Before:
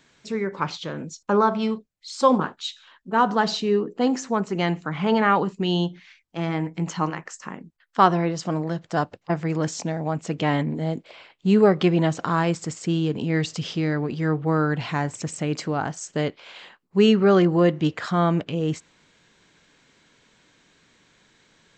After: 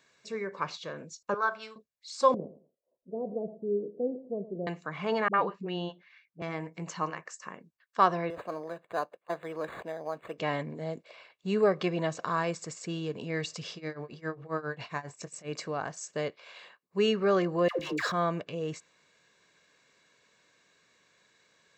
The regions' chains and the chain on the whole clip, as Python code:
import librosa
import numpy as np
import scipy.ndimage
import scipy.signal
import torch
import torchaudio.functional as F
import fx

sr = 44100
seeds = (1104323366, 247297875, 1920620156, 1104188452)

y = fx.chain(x, sr, fx.highpass(hz=1100.0, slope=6),
    fx.peak_eq(hz=1500.0, db=12.0, octaves=0.23),
    fx.band_widen(depth_pct=70), at=(1.34, 1.76))
y = fx.chain(y, sr, fx.steep_lowpass(hz=610.0, slope=48),
    fx.echo_feedback(ms=111, feedback_pct=22, wet_db=-15.5), at=(2.34, 4.67))
y = fx.chain(y, sr, fx.bandpass_edges(low_hz=120.0, high_hz=2800.0),
    fx.dispersion(late='highs', ms=59.0, hz=380.0), at=(5.28, 6.42))
y = fx.chain(y, sr, fx.highpass(hz=310.0, slope=12),
    fx.resample_linear(factor=8), at=(8.3, 10.38))
y = fx.chain(y, sr, fx.tremolo(hz=7.4, depth=0.91),
    fx.doubler(ms=22.0, db=-12.5), at=(13.74, 15.49))
y = fx.chain(y, sr, fx.peak_eq(hz=160.0, db=-13.0, octaves=0.97),
    fx.leveller(passes=2),
    fx.dispersion(late='lows', ms=114.0, hz=670.0), at=(17.68, 18.12))
y = fx.highpass(y, sr, hz=300.0, slope=6)
y = fx.notch(y, sr, hz=3200.0, q=9.6)
y = y + 0.4 * np.pad(y, (int(1.8 * sr / 1000.0), 0))[:len(y)]
y = y * librosa.db_to_amplitude(-6.5)